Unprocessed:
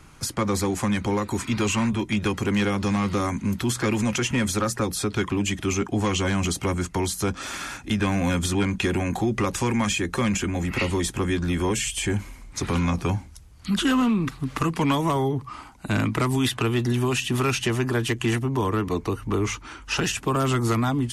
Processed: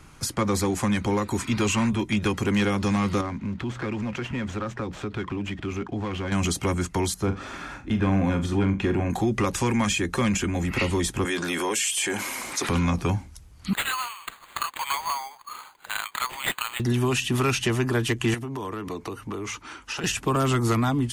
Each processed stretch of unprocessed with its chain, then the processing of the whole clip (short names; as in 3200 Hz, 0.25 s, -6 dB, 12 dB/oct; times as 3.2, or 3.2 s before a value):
3.21–6.32 median filter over 9 samples + LPF 5100 Hz + compressor 2:1, threshold -30 dBFS
7.14–9.1 LPF 1300 Hz 6 dB/oct + flutter echo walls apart 7.1 m, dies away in 0.25 s
11.25–12.69 HPF 430 Hz + high shelf 10000 Hz +6.5 dB + fast leveller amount 70%
13.73–16.8 steep high-pass 850 Hz + careless resampling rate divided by 8×, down none, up hold
18.34–20.04 HPF 200 Hz 6 dB/oct + compressor, threshold -28 dBFS
whole clip: dry